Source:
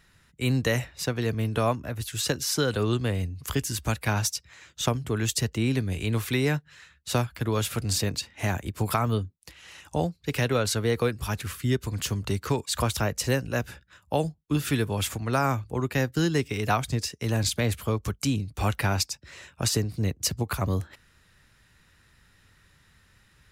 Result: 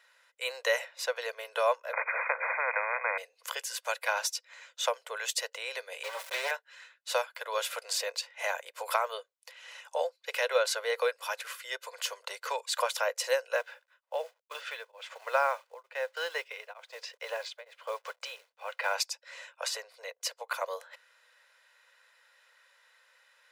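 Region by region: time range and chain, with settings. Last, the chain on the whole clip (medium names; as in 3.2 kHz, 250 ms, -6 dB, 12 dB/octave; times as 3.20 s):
1.93–3.18 s: brick-wall FIR low-pass 2.5 kHz + spectrum-flattening compressor 10:1
6.03–6.51 s: comb filter that takes the minimum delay 5.2 ms + small samples zeroed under -31 dBFS
13.56–18.94 s: low-pass 3.7 kHz + companded quantiser 6-bit + tremolo of two beating tones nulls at 1.1 Hz
19.52–20.55 s: high-pass 530 Hz 6 dB/octave + treble shelf 4.2 kHz -6 dB
whole clip: Chebyshev high-pass 500 Hz, order 6; treble shelf 5.7 kHz -7 dB; comb 2 ms, depth 40%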